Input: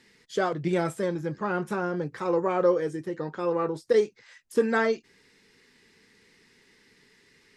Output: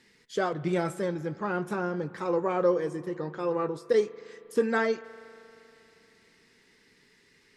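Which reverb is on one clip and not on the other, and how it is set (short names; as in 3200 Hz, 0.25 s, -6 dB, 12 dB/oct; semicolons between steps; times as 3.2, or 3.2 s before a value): spring tank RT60 3.2 s, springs 39 ms, chirp 45 ms, DRR 16.5 dB; gain -2 dB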